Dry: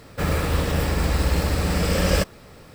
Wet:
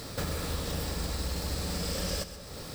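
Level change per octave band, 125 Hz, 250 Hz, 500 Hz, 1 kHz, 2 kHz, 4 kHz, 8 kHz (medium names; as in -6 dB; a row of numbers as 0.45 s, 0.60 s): -12.5 dB, -12.0 dB, -12.0 dB, -12.0 dB, -13.0 dB, -5.5 dB, -4.5 dB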